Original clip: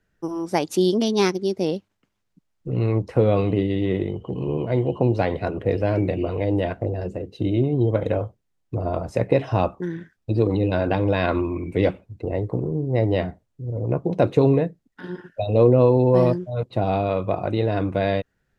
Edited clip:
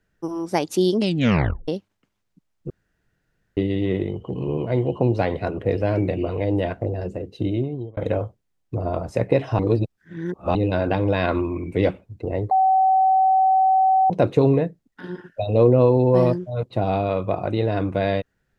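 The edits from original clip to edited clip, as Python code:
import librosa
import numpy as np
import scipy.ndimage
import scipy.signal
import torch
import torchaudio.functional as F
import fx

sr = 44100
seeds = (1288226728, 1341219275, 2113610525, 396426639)

y = fx.edit(x, sr, fx.tape_stop(start_s=0.97, length_s=0.71),
    fx.room_tone_fill(start_s=2.7, length_s=0.87),
    fx.fade_out_span(start_s=7.42, length_s=0.55),
    fx.reverse_span(start_s=9.59, length_s=0.96),
    fx.bleep(start_s=12.51, length_s=1.59, hz=761.0, db=-13.5), tone=tone)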